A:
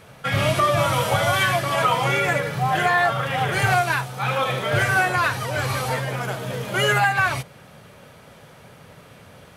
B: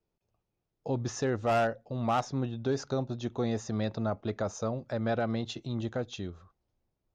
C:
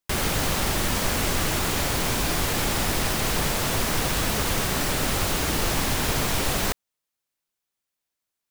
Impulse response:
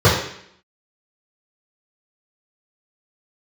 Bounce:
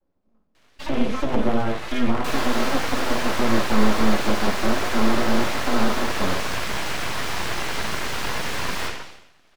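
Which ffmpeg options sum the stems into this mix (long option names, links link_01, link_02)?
-filter_complex "[0:a]equalizer=frequency=3200:width_type=o:width=2.8:gain=9.5,adelay=550,volume=-14.5dB[link_01];[1:a]volume=-11.5dB,asplit=2[link_02][link_03];[link_03]volume=-8.5dB[link_04];[2:a]highpass=frequency=550:width=0.5412,highpass=frequency=550:width=1.3066,adelay=2150,volume=2dB,asplit=2[link_05][link_06];[link_06]volume=-15dB[link_07];[3:a]atrim=start_sample=2205[link_08];[link_04][link_07]amix=inputs=2:normalize=0[link_09];[link_09][link_08]afir=irnorm=-1:irlink=0[link_10];[link_01][link_02][link_05][link_10]amix=inputs=4:normalize=0,highshelf=frequency=6900:gain=-10,acrossover=split=380[link_11][link_12];[link_12]acompressor=threshold=-29dB:ratio=2[link_13];[link_11][link_13]amix=inputs=2:normalize=0,aeval=exprs='abs(val(0))':channel_layout=same"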